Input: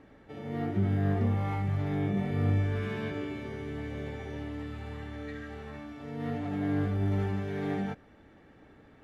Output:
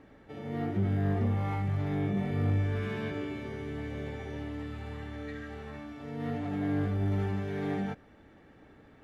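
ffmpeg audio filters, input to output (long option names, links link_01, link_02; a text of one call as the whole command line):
ffmpeg -i in.wav -af "asoftclip=type=tanh:threshold=-19dB" out.wav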